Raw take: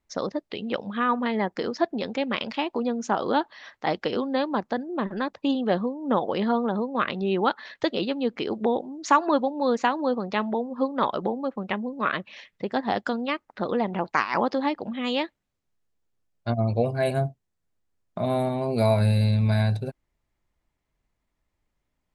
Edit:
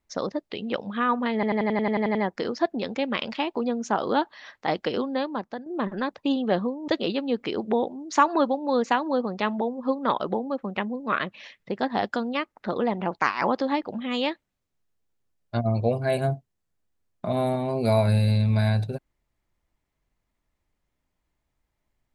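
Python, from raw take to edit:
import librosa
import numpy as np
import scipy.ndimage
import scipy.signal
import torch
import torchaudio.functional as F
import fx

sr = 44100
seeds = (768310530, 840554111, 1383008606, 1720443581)

y = fx.edit(x, sr, fx.stutter(start_s=1.34, slice_s=0.09, count=10),
    fx.fade_out_to(start_s=4.16, length_s=0.69, floor_db=-9.5),
    fx.cut(start_s=6.07, length_s=1.74), tone=tone)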